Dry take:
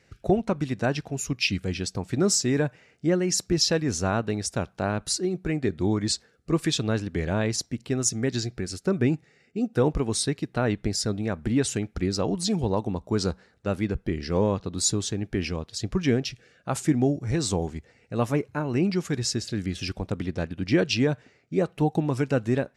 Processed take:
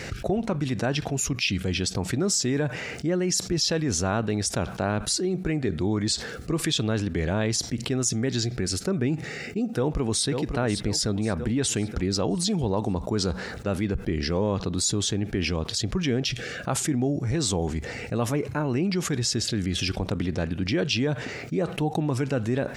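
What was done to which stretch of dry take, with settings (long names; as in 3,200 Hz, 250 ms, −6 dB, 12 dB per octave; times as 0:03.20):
0:09.69–0:10.26: delay throw 540 ms, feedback 50%, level −13.5 dB
whole clip: dynamic equaliser 3,300 Hz, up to +6 dB, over −54 dBFS, Q 7.5; envelope flattener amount 70%; level −5.5 dB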